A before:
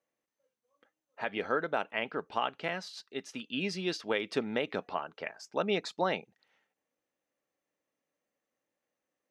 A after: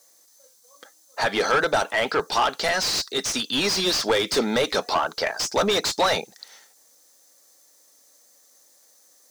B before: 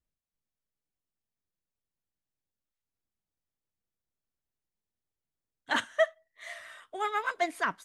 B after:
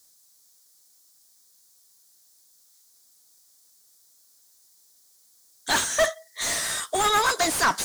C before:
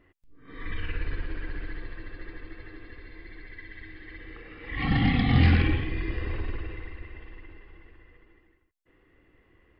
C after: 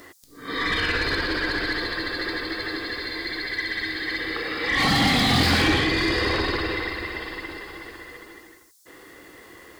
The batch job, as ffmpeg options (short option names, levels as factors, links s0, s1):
-filter_complex "[0:a]aexciter=amount=14.3:drive=7.2:freq=4200,asplit=2[s0][s1];[s1]highpass=f=720:p=1,volume=56.2,asoftclip=type=tanh:threshold=0.708[s2];[s0][s2]amix=inputs=2:normalize=0,lowpass=f=1900:p=1,volume=0.501,volume=0.501"